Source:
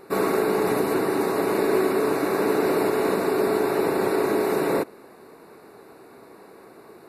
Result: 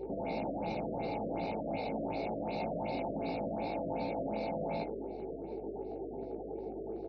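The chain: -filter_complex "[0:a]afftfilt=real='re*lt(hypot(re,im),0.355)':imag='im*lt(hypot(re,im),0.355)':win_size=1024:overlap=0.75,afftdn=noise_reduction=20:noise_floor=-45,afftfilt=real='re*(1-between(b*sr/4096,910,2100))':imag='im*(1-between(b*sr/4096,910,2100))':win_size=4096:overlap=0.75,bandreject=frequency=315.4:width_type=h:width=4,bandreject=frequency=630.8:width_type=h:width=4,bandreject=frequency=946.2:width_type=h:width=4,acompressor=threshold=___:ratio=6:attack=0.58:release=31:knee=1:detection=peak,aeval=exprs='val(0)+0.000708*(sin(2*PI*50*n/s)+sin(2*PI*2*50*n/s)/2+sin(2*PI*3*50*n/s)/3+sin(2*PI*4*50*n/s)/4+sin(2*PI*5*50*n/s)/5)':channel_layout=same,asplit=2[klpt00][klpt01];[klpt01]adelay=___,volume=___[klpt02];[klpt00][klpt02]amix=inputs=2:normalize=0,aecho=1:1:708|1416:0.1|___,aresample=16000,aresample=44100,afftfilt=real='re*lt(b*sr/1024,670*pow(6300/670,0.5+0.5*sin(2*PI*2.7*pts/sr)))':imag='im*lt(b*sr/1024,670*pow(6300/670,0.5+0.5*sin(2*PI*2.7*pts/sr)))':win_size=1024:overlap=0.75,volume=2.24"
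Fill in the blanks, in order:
0.00794, 18, 0.531, 0.031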